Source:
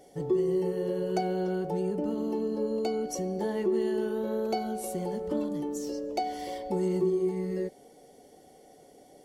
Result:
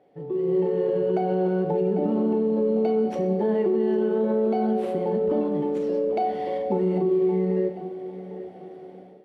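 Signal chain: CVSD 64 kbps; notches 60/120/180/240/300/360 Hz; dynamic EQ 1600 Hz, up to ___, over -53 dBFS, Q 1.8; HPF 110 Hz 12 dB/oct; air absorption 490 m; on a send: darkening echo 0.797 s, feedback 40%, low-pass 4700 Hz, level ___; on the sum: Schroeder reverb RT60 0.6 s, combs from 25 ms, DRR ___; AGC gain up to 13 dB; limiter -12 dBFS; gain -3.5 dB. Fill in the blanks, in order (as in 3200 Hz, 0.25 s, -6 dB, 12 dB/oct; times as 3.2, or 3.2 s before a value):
-3 dB, -15 dB, 8.5 dB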